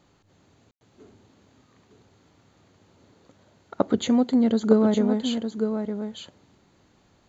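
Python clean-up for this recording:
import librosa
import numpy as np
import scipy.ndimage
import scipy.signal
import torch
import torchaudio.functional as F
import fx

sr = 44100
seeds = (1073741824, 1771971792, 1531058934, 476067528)

y = fx.fix_ambience(x, sr, seeds[0], print_start_s=6.75, print_end_s=7.25, start_s=0.71, end_s=0.81)
y = fx.fix_echo_inverse(y, sr, delay_ms=910, level_db=-7.5)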